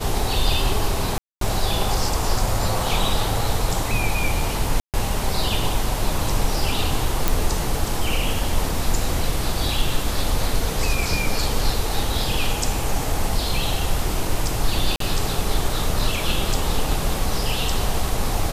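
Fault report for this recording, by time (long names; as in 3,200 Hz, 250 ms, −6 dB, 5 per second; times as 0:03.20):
0:01.18–0:01.41: drop-out 233 ms
0:04.80–0:04.94: drop-out 138 ms
0:07.28: click
0:14.96–0:15.00: drop-out 43 ms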